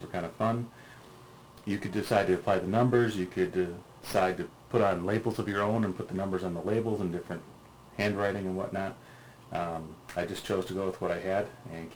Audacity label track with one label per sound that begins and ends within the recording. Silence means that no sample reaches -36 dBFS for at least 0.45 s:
1.670000	7.380000	sound
7.990000	8.920000	sound